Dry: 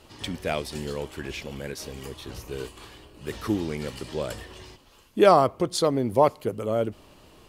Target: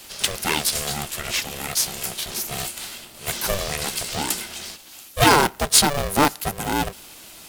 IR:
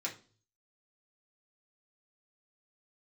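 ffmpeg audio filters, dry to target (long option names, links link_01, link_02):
-af "crystalizer=i=9:c=0,asoftclip=type=tanh:threshold=-6dB,aeval=exprs='val(0)*sgn(sin(2*PI*290*n/s))':channel_layout=same"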